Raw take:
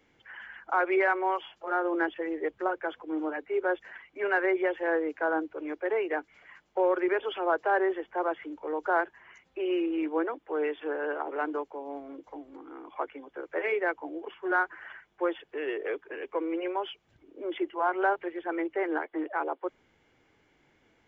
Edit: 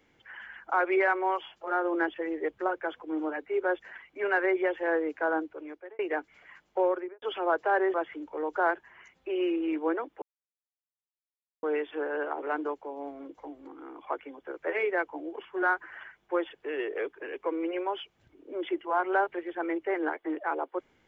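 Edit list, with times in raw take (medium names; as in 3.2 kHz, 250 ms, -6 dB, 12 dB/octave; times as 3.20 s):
5.34–5.99 s: fade out
6.79–7.22 s: studio fade out
7.94–8.24 s: delete
10.52 s: insert silence 1.41 s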